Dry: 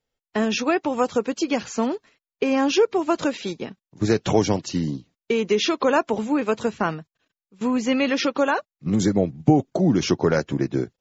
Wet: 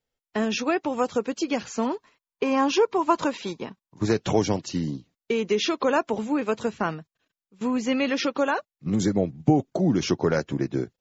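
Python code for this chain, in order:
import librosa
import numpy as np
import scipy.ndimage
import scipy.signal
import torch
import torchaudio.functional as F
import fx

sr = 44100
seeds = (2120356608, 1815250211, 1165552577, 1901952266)

y = fx.peak_eq(x, sr, hz=1000.0, db=11.5, octaves=0.37, at=(1.85, 4.12))
y = y * librosa.db_to_amplitude(-3.0)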